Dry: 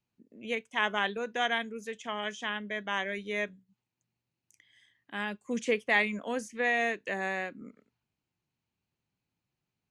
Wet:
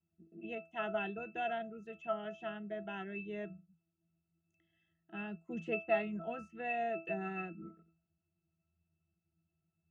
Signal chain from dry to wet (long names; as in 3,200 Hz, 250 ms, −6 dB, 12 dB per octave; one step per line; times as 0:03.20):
resonances in every octave E, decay 0.27 s
level +14.5 dB